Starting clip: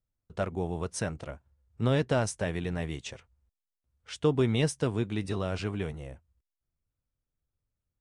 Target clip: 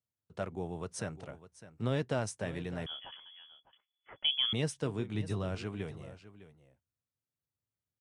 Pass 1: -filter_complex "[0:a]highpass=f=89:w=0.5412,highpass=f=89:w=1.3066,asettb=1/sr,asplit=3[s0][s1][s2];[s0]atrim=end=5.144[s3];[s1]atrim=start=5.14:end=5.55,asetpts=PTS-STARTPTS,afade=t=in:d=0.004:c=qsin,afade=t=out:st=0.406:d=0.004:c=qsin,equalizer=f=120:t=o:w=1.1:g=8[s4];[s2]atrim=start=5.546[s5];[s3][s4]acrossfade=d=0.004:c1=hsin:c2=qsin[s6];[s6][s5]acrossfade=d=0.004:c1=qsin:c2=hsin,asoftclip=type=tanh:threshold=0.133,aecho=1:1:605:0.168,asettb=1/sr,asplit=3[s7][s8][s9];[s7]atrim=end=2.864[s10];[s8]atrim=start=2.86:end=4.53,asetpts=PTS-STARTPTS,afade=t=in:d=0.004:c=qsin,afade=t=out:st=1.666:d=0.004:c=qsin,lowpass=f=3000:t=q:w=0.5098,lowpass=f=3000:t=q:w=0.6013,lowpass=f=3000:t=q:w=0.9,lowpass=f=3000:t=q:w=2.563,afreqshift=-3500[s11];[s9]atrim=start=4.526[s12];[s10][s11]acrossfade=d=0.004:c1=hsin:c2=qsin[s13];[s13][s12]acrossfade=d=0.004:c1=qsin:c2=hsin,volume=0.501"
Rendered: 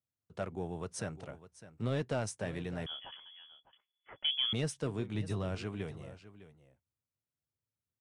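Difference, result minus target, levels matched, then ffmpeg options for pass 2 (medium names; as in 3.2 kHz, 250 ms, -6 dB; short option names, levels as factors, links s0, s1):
saturation: distortion +19 dB
-filter_complex "[0:a]highpass=f=89:w=0.5412,highpass=f=89:w=1.3066,asettb=1/sr,asplit=3[s0][s1][s2];[s0]atrim=end=5.144[s3];[s1]atrim=start=5.14:end=5.55,asetpts=PTS-STARTPTS,afade=t=in:d=0.004:c=qsin,afade=t=out:st=0.406:d=0.004:c=qsin,equalizer=f=120:t=o:w=1.1:g=8[s4];[s2]atrim=start=5.546[s5];[s3][s4]acrossfade=d=0.004:c1=hsin:c2=qsin[s6];[s6][s5]acrossfade=d=0.004:c1=qsin:c2=hsin,asoftclip=type=tanh:threshold=0.501,aecho=1:1:605:0.168,asettb=1/sr,asplit=3[s7][s8][s9];[s7]atrim=end=2.864[s10];[s8]atrim=start=2.86:end=4.53,asetpts=PTS-STARTPTS,afade=t=in:d=0.004:c=qsin,afade=t=out:st=1.666:d=0.004:c=qsin,lowpass=f=3000:t=q:w=0.5098,lowpass=f=3000:t=q:w=0.6013,lowpass=f=3000:t=q:w=0.9,lowpass=f=3000:t=q:w=2.563,afreqshift=-3500[s11];[s9]atrim=start=4.526[s12];[s10][s11]acrossfade=d=0.004:c1=hsin:c2=qsin[s13];[s13][s12]acrossfade=d=0.004:c1=qsin:c2=hsin,volume=0.501"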